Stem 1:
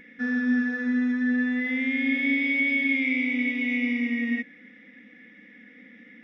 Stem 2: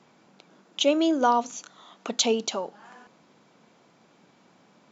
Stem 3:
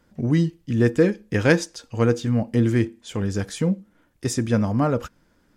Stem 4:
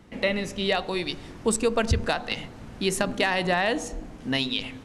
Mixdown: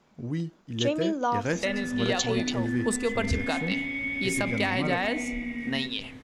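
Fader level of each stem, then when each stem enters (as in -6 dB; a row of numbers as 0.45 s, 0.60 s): -7.5 dB, -5.5 dB, -11.5 dB, -4.5 dB; 1.45 s, 0.00 s, 0.00 s, 1.40 s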